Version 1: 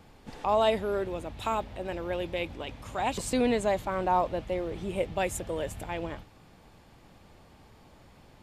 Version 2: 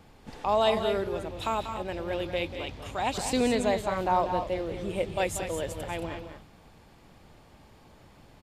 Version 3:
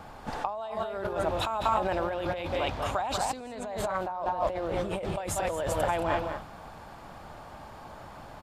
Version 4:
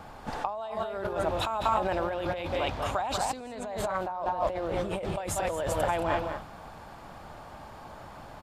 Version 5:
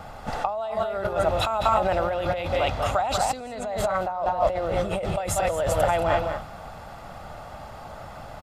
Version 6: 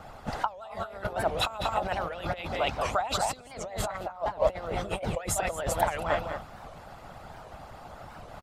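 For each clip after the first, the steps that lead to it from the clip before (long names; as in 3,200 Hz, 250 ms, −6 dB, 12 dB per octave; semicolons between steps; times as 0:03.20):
dynamic equaliser 4,500 Hz, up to +5 dB, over −54 dBFS, Q 1.5; on a send: loudspeakers that aren't time-aligned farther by 65 metres −10 dB, 76 metres −10 dB
compressor whose output falls as the input rises −36 dBFS, ratio −1; flat-topped bell 970 Hz +9 dB
no processing that can be heard
comb filter 1.5 ms, depth 41%; level +4.5 dB
harmonic and percussive parts rebalanced harmonic −16 dB; wow of a warped record 78 rpm, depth 250 cents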